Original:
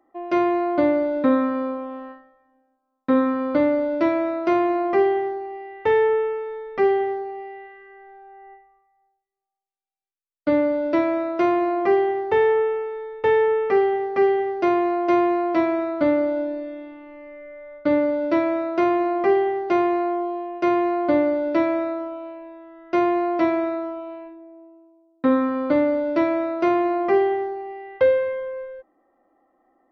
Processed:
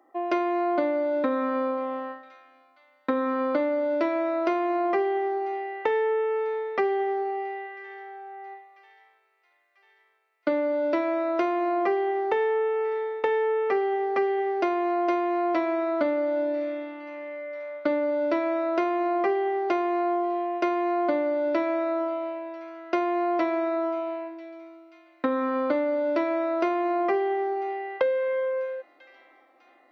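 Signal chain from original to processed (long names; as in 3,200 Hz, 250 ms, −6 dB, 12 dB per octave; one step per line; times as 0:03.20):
high-pass filter 340 Hz 12 dB per octave
delay with a high-pass on its return 993 ms, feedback 63%, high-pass 2,200 Hz, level −22.5 dB
downward compressor, threshold −27 dBFS, peak gain reduction 12.5 dB
level +4.5 dB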